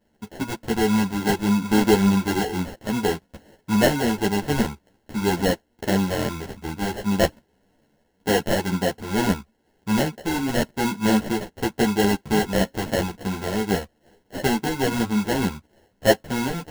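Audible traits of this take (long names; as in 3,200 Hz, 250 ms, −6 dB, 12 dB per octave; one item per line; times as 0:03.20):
aliases and images of a low sample rate 1,200 Hz, jitter 0%
a shimmering, thickened sound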